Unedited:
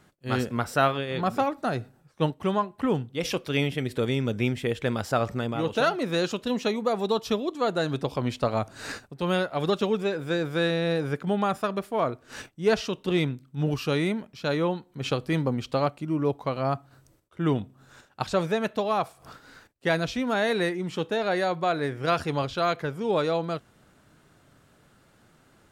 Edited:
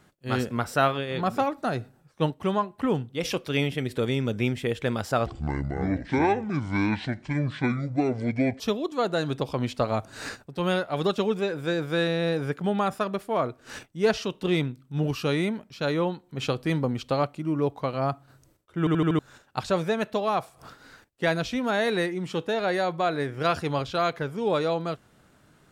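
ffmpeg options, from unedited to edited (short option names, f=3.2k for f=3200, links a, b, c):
-filter_complex "[0:a]asplit=8[a][b][c][d][e][f][g][h];[a]atrim=end=5.264[i];[b]atrim=start=5.26:end=7.23,asetpts=PTS-STARTPTS,asetrate=26019,aresample=44100,atrim=end_sample=147249,asetpts=PTS-STARTPTS[j];[c]atrim=start=7.226:end=17.502[k];[d]atrim=start=17.418:end=17.502[l];[e]atrim=start=17.418:end=17.502[m];[f]atrim=start=17.418:end=17.502[n];[g]atrim=start=17.418:end=17.502[o];[h]atrim=start=17.818[p];[i][j]acrossfade=d=0.004:c1=hsin:c2=hsin[q];[q][k]acrossfade=d=0.004:c1=hsin:c2=hsin[r];[r][l]acrossfade=d=0.004:c1=hsin:c2=hsin[s];[s][m]acrossfade=d=0.004:c1=hsin:c2=hsin[t];[t][n]acrossfade=d=0.004:c1=hsin:c2=hsin[u];[u][o]acrossfade=d=0.004:c1=hsin:c2=hsin[v];[v][p]acrossfade=d=0.004:c1=hsin:c2=hsin"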